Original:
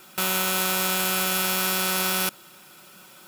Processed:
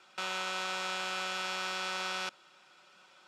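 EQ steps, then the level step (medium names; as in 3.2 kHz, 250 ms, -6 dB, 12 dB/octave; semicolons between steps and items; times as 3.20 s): distance through air 61 m; three-band isolator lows -13 dB, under 440 Hz, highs -22 dB, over 7.7 kHz; -7.5 dB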